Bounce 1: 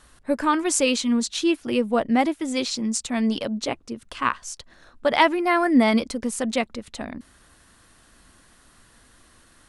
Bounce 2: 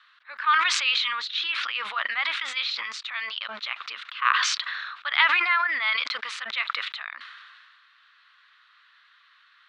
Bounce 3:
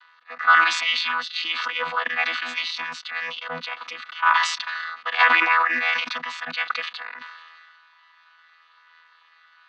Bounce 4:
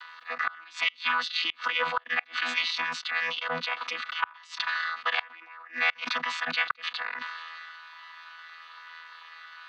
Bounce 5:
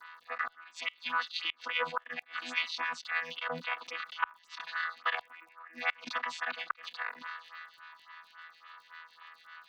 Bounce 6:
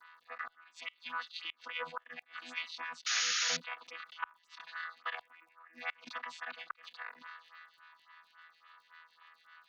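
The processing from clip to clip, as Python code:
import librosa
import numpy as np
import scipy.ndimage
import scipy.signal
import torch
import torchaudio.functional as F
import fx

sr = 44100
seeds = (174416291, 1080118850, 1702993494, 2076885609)

y1 = scipy.signal.sosfilt(scipy.signal.ellip(3, 1.0, 80, [1200.0, 3900.0], 'bandpass', fs=sr, output='sos'), x)
y1 = fx.sustainer(y1, sr, db_per_s=28.0)
y1 = F.gain(torch.from_numpy(y1), 2.5).numpy()
y2 = fx.chord_vocoder(y1, sr, chord='bare fifth', root=52)
y2 = F.gain(torch.from_numpy(y2), 4.0).numpy()
y3 = fx.gate_flip(y2, sr, shuts_db=-12.0, range_db=-32)
y3 = fx.band_squash(y3, sr, depth_pct=40)
y4 = fx.dmg_crackle(y3, sr, seeds[0], per_s=57.0, level_db=-48.0)
y4 = fx.stagger_phaser(y4, sr, hz=3.6)
y4 = F.gain(torch.from_numpy(y4), -2.5).numpy()
y5 = fx.spec_paint(y4, sr, seeds[1], shape='noise', start_s=3.06, length_s=0.51, low_hz=1200.0, high_hz=6900.0, level_db=-25.0)
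y5 = F.gain(torch.from_numpy(y5), -7.5).numpy()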